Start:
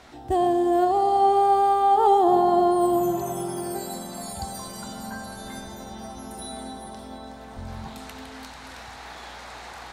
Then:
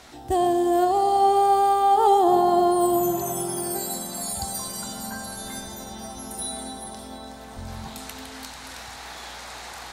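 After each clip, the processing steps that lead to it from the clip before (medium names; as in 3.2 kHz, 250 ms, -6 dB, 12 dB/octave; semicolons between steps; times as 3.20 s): treble shelf 4.4 kHz +10.5 dB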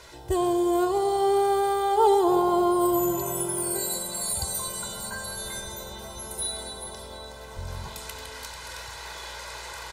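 comb 2 ms, depth 82%; trim -2 dB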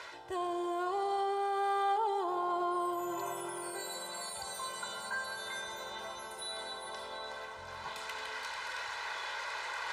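peak limiter -20 dBFS, peak gain reduction 10.5 dB; reverse; upward compressor, threshold -30 dBFS; reverse; band-pass filter 1.5 kHz, Q 0.8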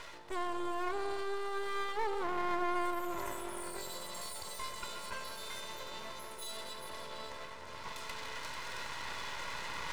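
comb of notches 770 Hz; half-wave rectifier; trim +3.5 dB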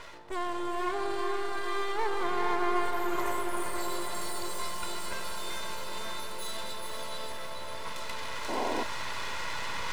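echo that smears into a reverb 488 ms, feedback 62%, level -4 dB; painted sound noise, 8.48–8.84 s, 210–1100 Hz -36 dBFS; tape noise reduction on one side only decoder only; trim +3.5 dB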